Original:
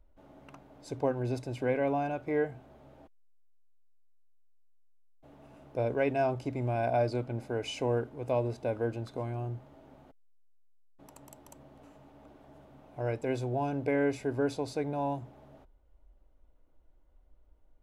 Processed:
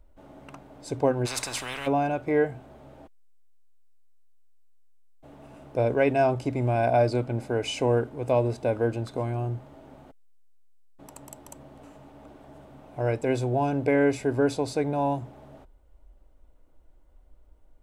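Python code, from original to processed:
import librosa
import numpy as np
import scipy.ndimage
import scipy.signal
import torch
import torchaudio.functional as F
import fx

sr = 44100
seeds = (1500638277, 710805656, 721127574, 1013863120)

y = fx.peak_eq(x, sr, hz=8300.0, db=5.5, octaves=0.28)
y = fx.spectral_comp(y, sr, ratio=10.0, at=(1.25, 1.86), fade=0.02)
y = y * 10.0 ** (6.5 / 20.0)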